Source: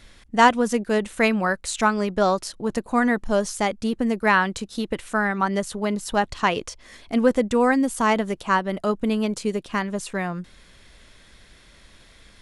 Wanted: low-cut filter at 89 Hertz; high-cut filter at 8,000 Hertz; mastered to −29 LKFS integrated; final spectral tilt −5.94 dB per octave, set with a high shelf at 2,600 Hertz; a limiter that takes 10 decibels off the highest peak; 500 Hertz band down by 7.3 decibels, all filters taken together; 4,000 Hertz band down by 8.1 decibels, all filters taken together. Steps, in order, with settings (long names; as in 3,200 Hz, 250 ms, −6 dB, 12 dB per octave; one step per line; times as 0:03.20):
high-pass filter 89 Hz
low-pass filter 8,000 Hz
parametric band 500 Hz −8.5 dB
high-shelf EQ 2,600 Hz −6.5 dB
parametric band 4,000 Hz −5.5 dB
level −1 dB
brickwall limiter −17.5 dBFS